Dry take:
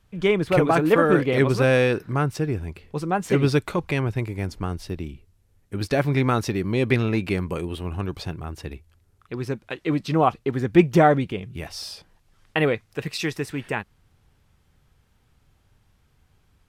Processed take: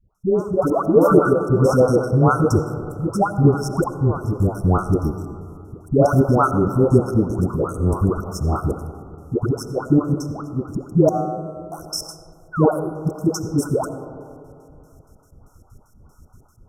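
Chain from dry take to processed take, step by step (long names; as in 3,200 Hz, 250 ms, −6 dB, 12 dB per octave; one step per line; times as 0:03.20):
automatic gain control gain up to 13 dB
gate pattern "x..xx.x." 191 BPM −60 dB
all-pass dispersion highs, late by 149 ms, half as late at 740 Hz
0:11.09–0:11.72: tuned comb filter 58 Hz, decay 0.89 s, harmonics odd, mix 100%
0:12.25–0:12.92: sound drawn into the spectrogram fall 290–5,100 Hz −30 dBFS
linear-phase brick-wall band-stop 1,500–5,200 Hz
convolution reverb RT60 2.5 s, pre-delay 40 ms, DRR 10 dB
level +1.5 dB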